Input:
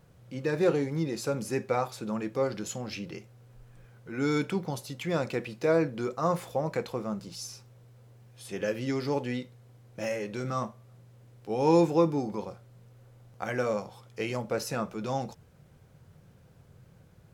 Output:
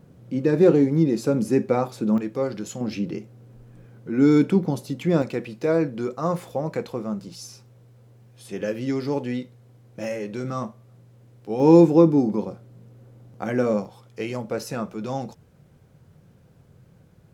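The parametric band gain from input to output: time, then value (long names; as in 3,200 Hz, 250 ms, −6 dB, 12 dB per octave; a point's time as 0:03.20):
parametric band 250 Hz 2 octaves
+14 dB
from 0:02.18 +5.5 dB
from 0:02.81 +14 dB
from 0:05.22 +6 dB
from 0:11.60 +13 dB
from 0:13.85 +5 dB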